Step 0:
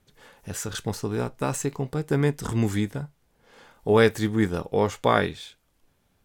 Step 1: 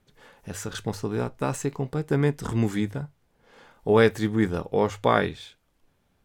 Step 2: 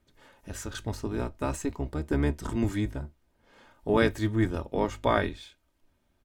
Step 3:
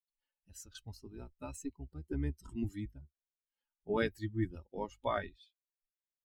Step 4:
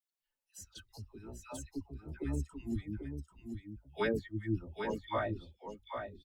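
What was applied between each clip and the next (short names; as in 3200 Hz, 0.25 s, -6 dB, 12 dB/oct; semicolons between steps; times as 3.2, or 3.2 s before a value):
high shelf 4700 Hz -6 dB; notches 50/100 Hz
octaver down 1 oct, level -2 dB; comb 3.2 ms, depth 44%; gain -4.5 dB
per-bin expansion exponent 2; gain -6.5 dB
dispersion lows, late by 0.12 s, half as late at 920 Hz; on a send: echo 0.79 s -6.5 dB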